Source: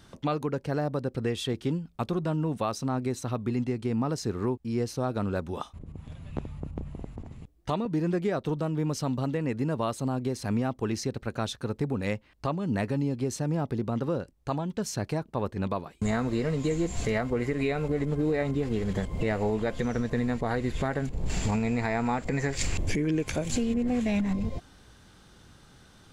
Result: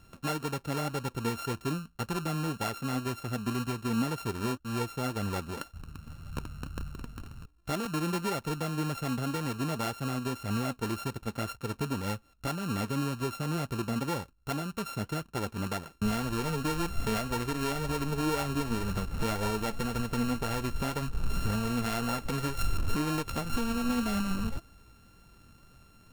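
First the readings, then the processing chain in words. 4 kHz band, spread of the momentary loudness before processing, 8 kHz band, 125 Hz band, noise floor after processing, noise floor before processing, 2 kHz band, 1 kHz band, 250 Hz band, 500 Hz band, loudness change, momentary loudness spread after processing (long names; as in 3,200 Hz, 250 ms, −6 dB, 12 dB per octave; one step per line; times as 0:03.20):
+2.0 dB, 6 LU, −0.5 dB, −3.5 dB, −60 dBFS, −57 dBFS, −0.5 dB, 0.0 dB, −3.5 dB, −6.0 dB, −3.0 dB, 6 LU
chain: samples sorted by size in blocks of 32 samples
low-shelf EQ 200 Hz +3.5 dB
flanger 1.9 Hz, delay 1 ms, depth 3.9 ms, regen +64%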